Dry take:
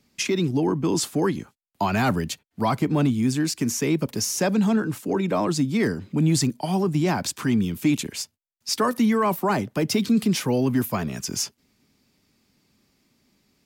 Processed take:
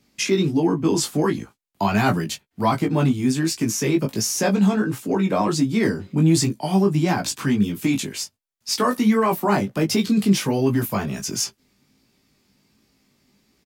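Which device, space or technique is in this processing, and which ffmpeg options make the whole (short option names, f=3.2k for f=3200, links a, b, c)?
double-tracked vocal: -filter_complex "[0:a]asplit=2[a][b];[b]adelay=15,volume=-10.5dB[c];[a][c]amix=inputs=2:normalize=0,flanger=delay=17.5:depth=3.2:speed=1.4,volume=5dB"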